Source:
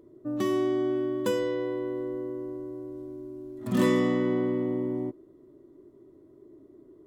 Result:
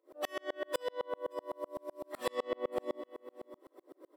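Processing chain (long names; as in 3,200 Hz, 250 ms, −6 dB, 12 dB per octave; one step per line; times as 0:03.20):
high-pass filter 520 Hz 24 dB per octave
notch filter 6,600 Hz, Q 5.3
comb filter 3.8 ms, depth 56%
in parallel at +1.5 dB: brickwall limiter −30 dBFS, peak gain reduction 11.5 dB
on the sum: downward compressor 6 to 1, threshold −38 dBFS, peak gain reduction 14.5 dB
gain into a clipping stage and back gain 31.5 dB
time stretch by phase vocoder 0.59×
on a send: repeating echo 572 ms, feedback 16%, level −13.5 dB
on the sum: tremolo with a ramp in dB swelling 7.9 Hz, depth 38 dB
level +14 dB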